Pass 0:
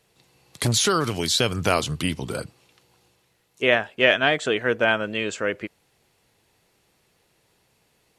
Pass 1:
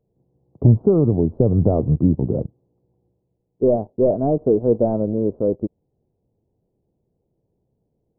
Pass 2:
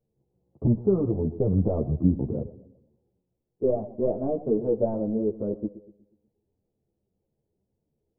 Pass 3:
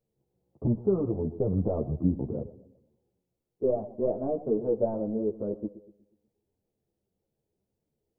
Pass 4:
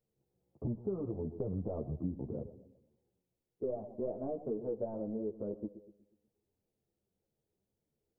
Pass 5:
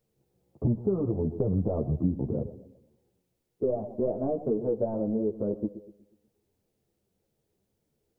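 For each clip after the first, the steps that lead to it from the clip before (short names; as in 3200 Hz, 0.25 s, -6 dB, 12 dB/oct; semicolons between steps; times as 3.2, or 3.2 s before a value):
sample leveller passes 2; Gaussian blur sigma 16 samples; gain +4.5 dB
darkening echo 0.122 s, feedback 45%, low-pass 1100 Hz, level -15 dB; ensemble effect; gain -4.5 dB
low shelf 380 Hz -5.5 dB
compressor 2.5:1, threshold -32 dBFS, peak gain reduction 9 dB; gain -4 dB
dynamic EQ 130 Hz, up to +3 dB, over -49 dBFS, Q 0.73; gain +8.5 dB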